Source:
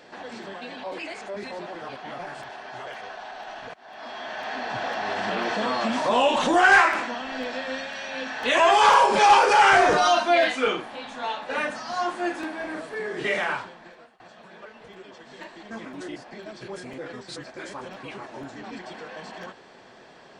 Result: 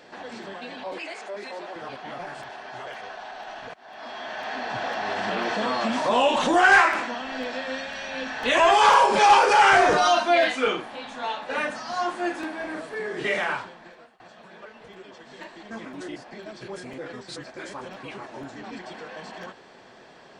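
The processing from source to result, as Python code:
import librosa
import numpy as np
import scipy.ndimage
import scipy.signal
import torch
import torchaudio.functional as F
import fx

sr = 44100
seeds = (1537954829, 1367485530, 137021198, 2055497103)

y = fx.highpass(x, sr, hz=340.0, slope=12, at=(0.98, 1.76))
y = fx.low_shelf(y, sr, hz=110.0, db=10.0, at=(7.88, 8.74))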